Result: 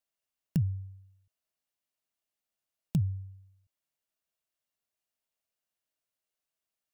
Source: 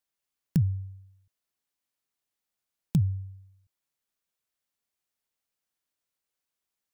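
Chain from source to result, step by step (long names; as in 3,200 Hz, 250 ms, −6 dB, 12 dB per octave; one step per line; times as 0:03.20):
hollow resonant body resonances 640/2,800 Hz, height 9 dB
level −4 dB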